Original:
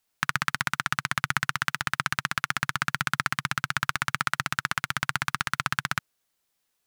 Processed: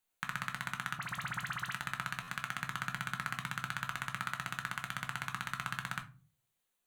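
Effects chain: bell 5200 Hz -12.5 dB 0.22 oct; limiter -11 dBFS, peak gain reduction 6.5 dB; 0.98–1.73 dispersion highs, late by 42 ms, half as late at 2000 Hz; reverb RT60 0.35 s, pre-delay 5 ms, DRR 4 dB; stuck buffer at 2.22, samples 512, times 4; gain -7 dB

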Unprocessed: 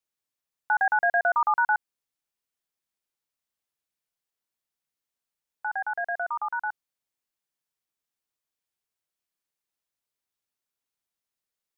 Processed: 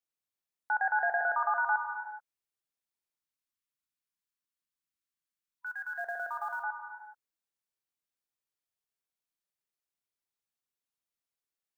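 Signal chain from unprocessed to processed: 3.18–5.99 spectral gain 360–980 Hz -21 dB; non-linear reverb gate 0.45 s flat, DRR 4.5 dB; 5.66–6.63 short-mantissa float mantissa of 4-bit; gain -7 dB

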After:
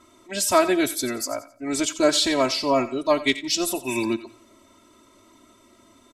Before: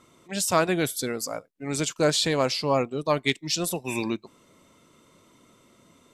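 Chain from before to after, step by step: comb 3.1 ms, depth 97%; thinning echo 88 ms, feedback 31%, high-pass 990 Hz, level -13 dB; on a send at -20 dB: reverb RT60 0.55 s, pre-delay 12 ms

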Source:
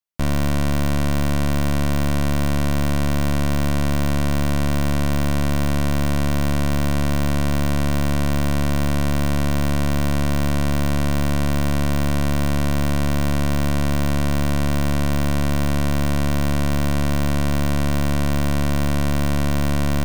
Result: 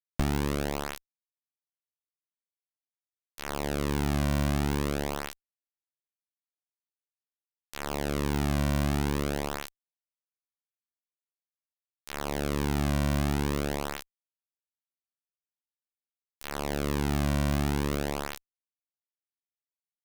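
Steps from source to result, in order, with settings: flange 0.23 Hz, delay 6.8 ms, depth 2.9 ms, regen +4%; Schmitt trigger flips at -32 dBFS; limiter -21 dBFS, peak gain reduction 7 dB; gain +2 dB

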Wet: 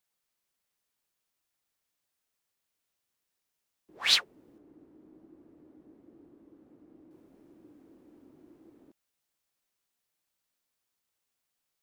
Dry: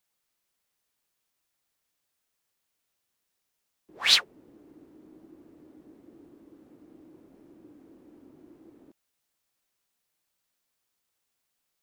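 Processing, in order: 4.58–7.11 high shelf 2400 Hz -9 dB; gain -3.5 dB

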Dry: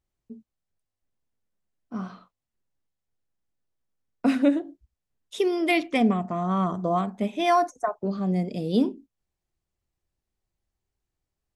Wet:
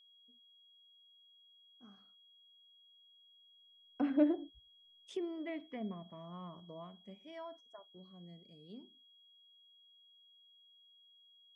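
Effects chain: Doppler pass-by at 4.47, 20 m/s, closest 3.7 m; treble ducked by the level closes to 1500 Hz, closed at -37 dBFS; whine 3300 Hz -59 dBFS; gain -3.5 dB

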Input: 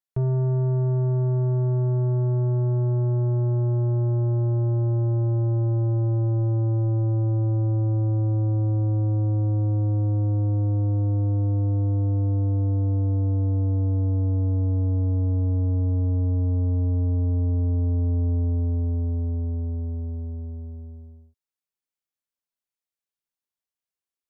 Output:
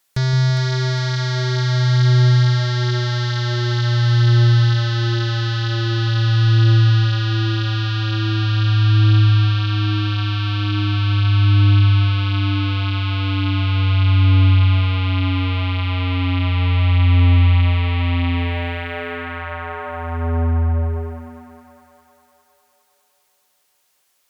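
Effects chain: low shelf 470 Hz -9 dB; in parallel at -3.5 dB: sine folder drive 17 dB, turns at -26 dBFS; on the sum: split-band echo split 610 Hz, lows 0.168 s, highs 0.407 s, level -6 dB; gain +8.5 dB

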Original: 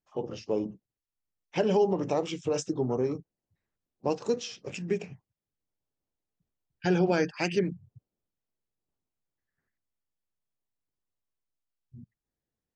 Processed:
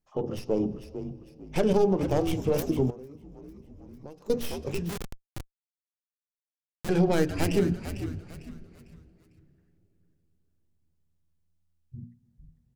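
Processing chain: tracing distortion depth 0.43 ms; in parallel at -0.5 dB: limiter -23.5 dBFS, peak gain reduction 9.5 dB; 1.73–2.27 on the sum: expander -22 dBFS; tilt -2.5 dB/oct; notches 60/120/180/240/300/360/420 Hz; frequency-shifting echo 0.45 s, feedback 35%, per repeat -80 Hz, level -10 dB; reverb RT60 3.4 s, pre-delay 69 ms, DRR 19.5 dB; 2.9–4.3 compressor 6:1, threshold -39 dBFS, peak gain reduction 22 dB; 4.89–6.89 Schmitt trigger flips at -23.5 dBFS; high shelf 3700 Hz +9 dB; gain -4.5 dB

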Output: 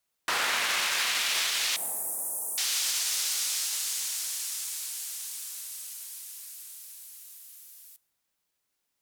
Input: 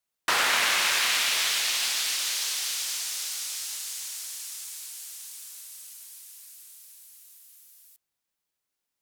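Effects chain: 1.76–2.58 elliptic band-stop 770–9500 Hz, stop band 60 dB; limiter -22.5 dBFS, peak gain reduction 11 dB; plate-style reverb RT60 2.8 s, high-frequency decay 0.3×, DRR 18 dB; gain +4 dB

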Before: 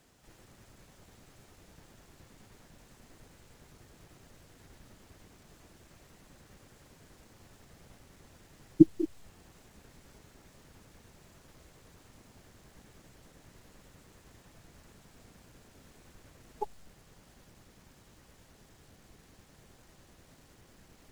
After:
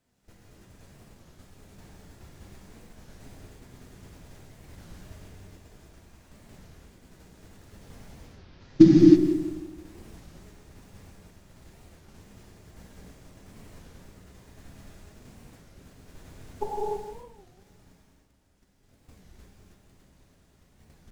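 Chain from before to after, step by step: 8.08–9 CVSD 32 kbps; gate -55 dBFS, range -16 dB; low shelf 240 Hz +5.5 dB; 17.97–18.83 level quantiser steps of 13 dB; on a send: darkening echo 0.167 s, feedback 43%, low-pass 3600 Hz, level -10 dB; on the sum: non-linear reverb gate 0.35 s flat, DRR -6 dB; record warp 33 1/3 rpm, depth 250 cents; gain +2 dB

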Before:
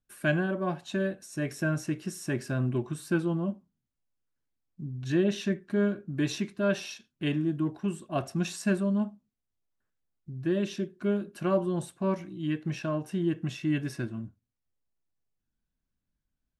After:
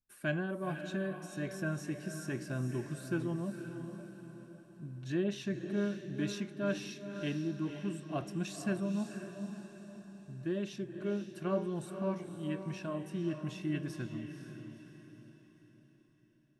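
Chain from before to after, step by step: diffused feedback echo 0.501 s, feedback 47%, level -8 dB; gain -7.5 dB

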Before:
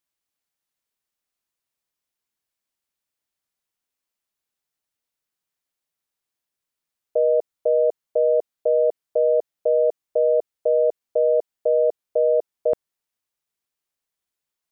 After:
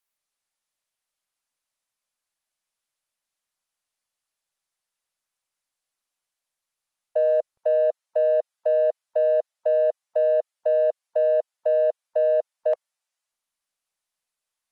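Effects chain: in parallel at -11.5 dB: soft clip -22 dBFS, distortion -10 dB; on the sum: steep high-pass 520 Hz 72 dB/oct; Opus 24 kbps 48000 Hz

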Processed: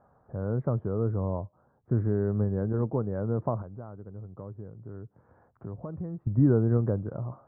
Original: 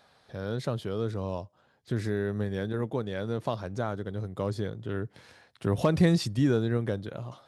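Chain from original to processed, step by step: steep low-pass 1300 Hz 36 dB/oct; low shelf 180 Hz +7.5 dB; 3.62–6.27 compressor 2:1, threshold -49 dBFS, peak gain reduction 18.5 dB

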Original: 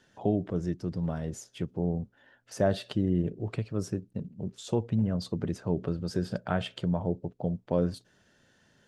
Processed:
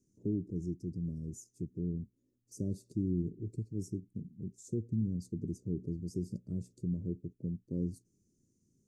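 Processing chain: elliptic band-stop 350–6400 Hz, stop band 40 dB; gain -5 dB

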